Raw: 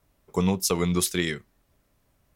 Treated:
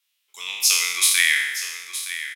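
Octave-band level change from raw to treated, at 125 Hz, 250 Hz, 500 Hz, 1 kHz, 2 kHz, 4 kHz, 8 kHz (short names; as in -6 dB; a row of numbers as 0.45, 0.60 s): under -40 dB, under -30 dB, under -20 dB, -4.0 dB, +15.0 dB, +12.0 dB, +11.0 dB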